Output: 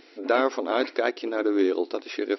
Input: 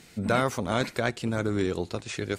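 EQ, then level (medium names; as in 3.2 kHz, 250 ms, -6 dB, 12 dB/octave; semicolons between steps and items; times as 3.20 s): brick-wall FIR band-pass 260–5800 Hz; bass shelf 490 Hz +10 dB; 0.0 dB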